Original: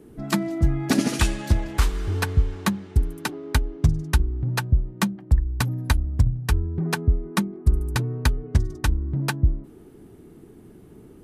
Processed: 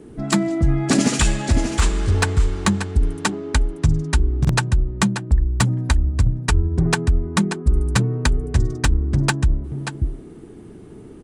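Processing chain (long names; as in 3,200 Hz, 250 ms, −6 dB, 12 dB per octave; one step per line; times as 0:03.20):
on a send: single-tap delay 584 ms −9 dB
on the sum: dynamic equaliser 7,400 Hz, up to +8 dB, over −55 dBFS, Q 4.9
in parallel at −2 dB: compressor whose output falls as the input rises −20 dBFS, ratio −0.5
on the sum: downsampling to 22,050 Hz
hard clipping −7.5 dBFS, distortion −30 dB
buffer that repeats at 0:04.40, samples 2,048, times 1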